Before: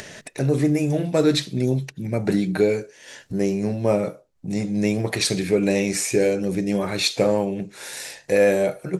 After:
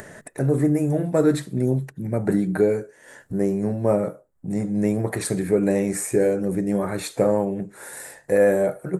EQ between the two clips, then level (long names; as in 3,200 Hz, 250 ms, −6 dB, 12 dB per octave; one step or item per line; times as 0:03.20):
flat-topped bell 3,800 Hz −14.5 dB
0.0 dB